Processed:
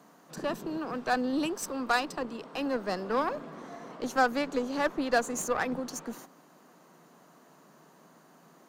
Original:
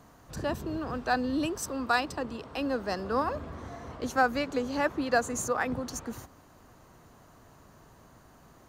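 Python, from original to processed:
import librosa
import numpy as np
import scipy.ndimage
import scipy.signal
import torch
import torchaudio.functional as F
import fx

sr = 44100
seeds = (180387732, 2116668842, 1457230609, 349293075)

y = scipy.signal.sosfilt(scipy.signal.ellip(4, 1.0, 40, 160.0, 'highpass', fs=sr, output='sos'), x)
y = fx.cheby_harmonics(y, sr, harmonics=(8,), levels_db=(-24,), full_scale_db=-13.5)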